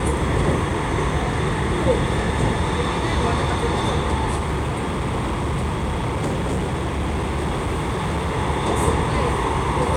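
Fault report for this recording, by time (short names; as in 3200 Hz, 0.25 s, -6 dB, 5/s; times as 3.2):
4.36–8.37 clipped -19 dBFS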